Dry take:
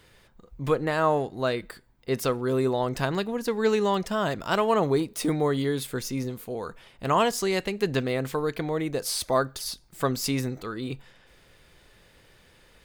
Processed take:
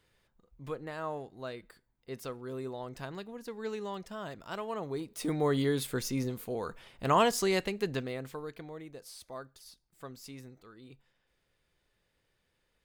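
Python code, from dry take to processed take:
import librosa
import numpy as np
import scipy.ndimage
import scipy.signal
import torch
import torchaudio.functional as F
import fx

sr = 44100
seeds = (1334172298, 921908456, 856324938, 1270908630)

y = fx.gain(x, sr, db=fx.line((4.86, -14.5), (5.54, -2.5), (7.54, -2.5), (8.2, -11.5), (9.12, -20.0)))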